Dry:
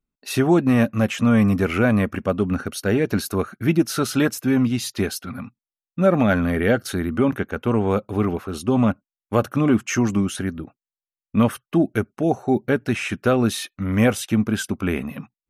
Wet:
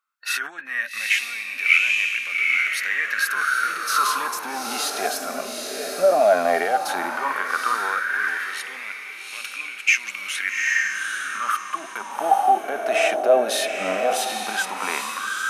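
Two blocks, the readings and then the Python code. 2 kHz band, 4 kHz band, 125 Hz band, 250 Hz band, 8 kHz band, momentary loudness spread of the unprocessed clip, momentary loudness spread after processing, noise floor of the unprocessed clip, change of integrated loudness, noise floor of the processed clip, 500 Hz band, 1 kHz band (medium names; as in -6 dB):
+8.5 dB, +5.0 dB, under -30 dB, -20.5 dB, +3.5 dB, 8 LU, 11 LU, under -85 dBFS, -1.0 dB, -37 dBFS, -1.0 dB, +7.0 dB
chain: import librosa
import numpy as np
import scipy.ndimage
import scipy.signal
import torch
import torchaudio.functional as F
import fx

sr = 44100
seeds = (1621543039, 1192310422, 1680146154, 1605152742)

p1 = fx.over_compress(x, sr, threshold_db=-22.0, ratio=-1.0)
p2 = scipy.signal.sosfilt(scipy.signal.butter(4, 150.0, 'highpass', fs=sr, output='sos'), p1)
p3 = p2 + fx.echo_diffused(p2, sr, ms=819, feedback_pct=41, wet_db=-6.0, dry=0)
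p4 = fx.filter_lfo_highpass(p3, sr, shape='sine', hz=0.13, low_hz=630.0, high_hz=2400.0, q=7.3)
p5 = fx.hpss(p4, sr, part='percussive', gain_db=-10)
y = p5 * librosa.db_to_amplitude(5.0)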